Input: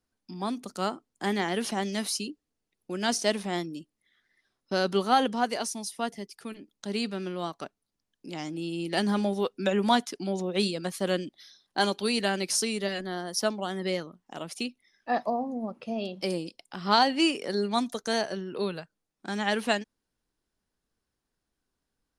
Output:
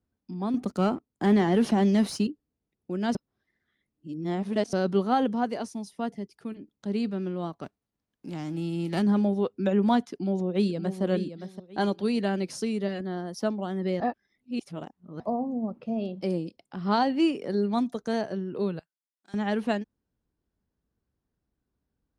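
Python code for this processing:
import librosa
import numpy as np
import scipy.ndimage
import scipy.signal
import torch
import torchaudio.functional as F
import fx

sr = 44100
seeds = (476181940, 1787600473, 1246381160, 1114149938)

y = fx.leveller(x, sr, passes=2, at=(0.54, 2.27))
y = fx.envelope_flatten(y, sr, power=0.6, at=(7.63, 9.01), fade=0.02)
y = fx.echo_throw(y, sr, start_s=10.1, length_s=0.92, ms=570, feedback_pct=25, wet_db=-9.5)
y = fx.differentiator(y, sr, at=(18.79, 19.34))
y = fx.edit(y, sr, fx.reverse_span(start_s=3.15, length_s=1.58),
    fx.reverse_span(start_s=14.0, length_s=1.2), tone=tone)
y = scipy.signal.sosfilt(scipy.signal.butter(2, 66.0, 'highpass', fs=sr, output='sos'), y)
y = fx.tilt_eq(y, sr, slope=-3.5)
y = y * librosa.db_to_amplitude(-3.5)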